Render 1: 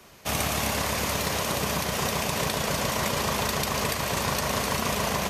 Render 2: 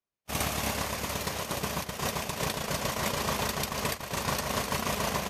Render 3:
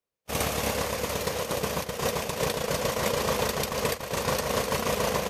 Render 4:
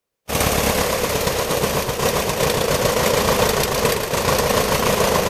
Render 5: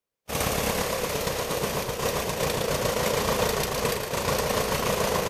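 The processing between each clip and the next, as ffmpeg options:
-af "agate=range=0.00794:threshold=0.0501:ratio=16:detection=peak,volume=0.891"
-af "equalizer=f=490:w=4.6:g=12,volume=1.19"
-filter_complex "[0:a]asplit=5[s0][s1][s2][s3][s4];[s1]adelay=112,afreqshift=-34,volume=0.501[s5];[s2]adelay=224,afreqshift=-68,volume=0.186[s6];[s3]adelay=336,afreqshift=-102,volume=0.0684[s7];[s4]adelay=448,afreqshift=-136,volume=0.0254[s8];[s0][s5][s6][s7][s8]amix=inputs=5:normalize=0,volume=2.66"
-filter_complex "[0:a]asplit=2[s0][s1];[s1]adelay=34,volume=0.282[s2];[s0][s2]amix=inputs=2:normalize=0,volume=0.398"

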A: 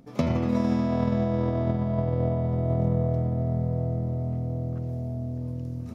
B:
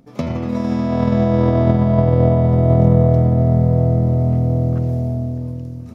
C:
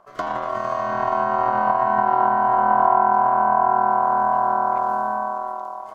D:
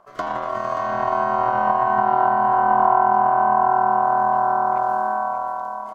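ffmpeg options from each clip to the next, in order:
-af "dynaudnorm=f=300:g=7:m=3.76,volume=1.26"
-filter_complex "[0:a]acrossover=split=190[s0][s1];[s1]acompressor=threshold=0.0708:ratio=6[s2];[s0][s2]amix=inputs=2:normalize=0,aeval=exprs='val(0)*sin(2*PI*870*n/s)':c=same"
-af "aecho=1:1:579:0.316"

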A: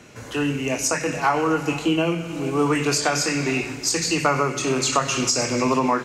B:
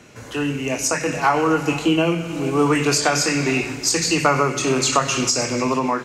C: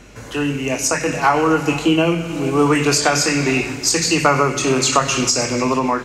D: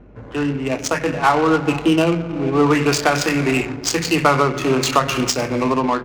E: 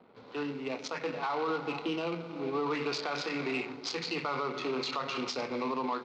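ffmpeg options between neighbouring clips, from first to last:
-af "dynaudnorm=f=210:g=9:m=1.5"
-af "aeval=exprs='val(0)+0.00398*(sin(2*PI*50*n/s)+sin(2*PI*2*50*n/s)/2+sin(2*PI*3*50*n/s)/3+sin(2*PI*4*50*n/s)/4+sin(2*PI*5*50*n/s)/5)':c=same,volume=1.33"
-af "adynamicsmooth=sensitivity=1.5:basefreq=770"
-af "acrusher=bits=6:mix=0:aa=0.5,highpass=290,equalizer=f=320:t=q:w=4:g=-6,equalizer=f=630:t=q:w=4:g=-6,equalizer=f=1700:t=q:w=4:g=-8,equalizer=f=2900:t=q:w=4:g=-4,equalizer=f=4100:t=q:w=4:g=5,lowpass=f=4700:w=0.5412,lowpass=f=4700:w=1.3066,alimiter=limit=0.178:level=0:latency=1:release=34,volume=0.355"

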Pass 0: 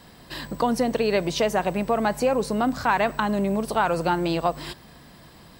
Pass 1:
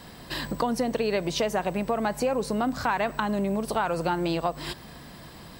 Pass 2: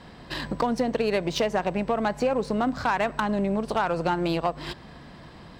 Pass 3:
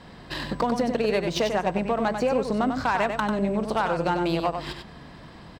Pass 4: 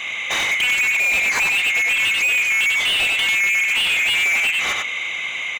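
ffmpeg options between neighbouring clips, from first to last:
-af "acompressor=threshold=0.0251:ratio=2,volume=1.5"
-af "adynamicsmooth=sensitivity=5:basefreq=4400,aeval=exprs='0.282*(cos(1*acos(clip(val(0)/0.282,-1,1)))-cos(1*PI/2))+0.0447*(cos(5*acos(clip(val(0)/0.282,-1,1)))-cos(5*PI/2))+0.0316*(cos(7*acos(clip(val(0)/0.282,-1,1)))-cos(7*PI/2))':c=same"
-af "aecho=1:1:95:0.473"
-filter_complex "[0:a]afftfilt=real='real(if(lt(b,920),b+92*(1-2*mod(floor(b/92),2)),b),0)':imag='imag(if(lt(b,920),b+92*(1-2*mod(floor(b/92),2)),b),0)':win_size=2048:overlap=0.75,asplit=2[s0][s1];[s1]highpass=f=720:p=1,volume=25.1,asoftclip=type=tanh:threshold=0.299[s2];[s0][s2]amix=inputs=2:normalize=0,lowpass=f=3200:p=1,volume=0.501"

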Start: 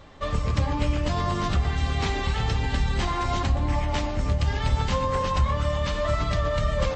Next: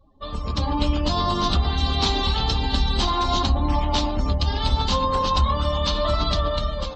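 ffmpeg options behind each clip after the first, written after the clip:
-af "afftdn=nr=27:nf=-43,equalizer=f=125:t=o:w=1:g=-10,equalizer=f=250:t=o:w=1:g=4,equalizer=f=500:t=o:w=1:g=-4,equalizer=f=1000:t=o:w=1:g=4,equalizer=f=2000:t=o:w=1:g=-12,equalizer=f=4000:t=o:w=1:g=12,dynaudnorm=f=150:g=7:m=3.16,volume=0.596"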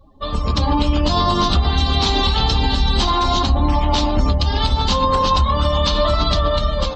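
-af "alimiter=limit=0.178:level=0:latency=1:release=139,volume=2.51"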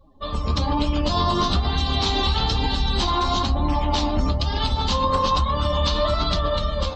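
-af "flanger=delay=5.2:depth=9.2:regen=68:speed=1.1:shape=triangular"

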